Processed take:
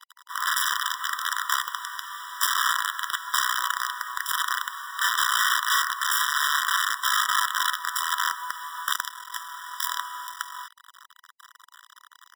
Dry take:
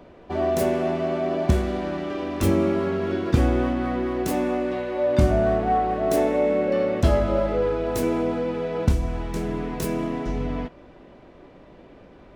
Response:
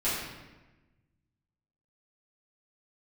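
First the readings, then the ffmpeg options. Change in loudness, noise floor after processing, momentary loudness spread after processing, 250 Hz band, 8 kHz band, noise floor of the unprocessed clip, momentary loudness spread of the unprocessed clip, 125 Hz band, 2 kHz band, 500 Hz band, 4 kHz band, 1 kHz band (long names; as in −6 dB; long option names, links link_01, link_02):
−1.5 dB, −57 dBFS, 13 LU, below −40 dB, +12.5 dB, −48 dBFS, 8 LU, below −40 dB, +11.0 dB, below −40 dB, +14.5 dB, +2.5 dB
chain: -af "acrusher=bits=4:dc=4:mix=0:aa=0.000001,afftfilt=real='re*eq(mod(floor(b*sr/1024/990),2),1)':imag='im*eq(mod(floor(b*sr/1024/990),2),1)':win_size=1024:overlap=0.75,volume=6dB"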